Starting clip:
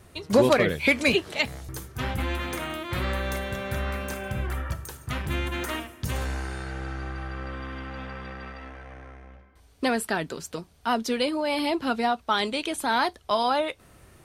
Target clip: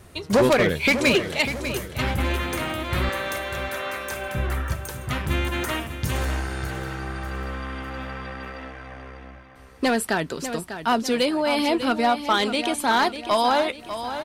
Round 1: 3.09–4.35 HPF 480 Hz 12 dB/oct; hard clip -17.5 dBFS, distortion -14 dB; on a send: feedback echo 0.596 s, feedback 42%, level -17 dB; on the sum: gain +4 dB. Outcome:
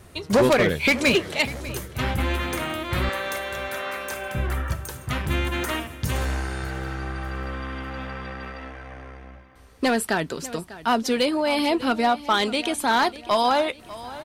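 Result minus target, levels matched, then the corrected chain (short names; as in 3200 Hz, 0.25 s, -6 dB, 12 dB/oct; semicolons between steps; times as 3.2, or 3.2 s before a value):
echo-to-direct -6.5 dB
3.09–4.35 HPF 480 Hz 12 dB/oct; hard clip -17.5 dBFS, distortion -14 dB; on a send: feedback echo 0.596 s, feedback 42%, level -10.5 dB; on the sum: gain +4 dB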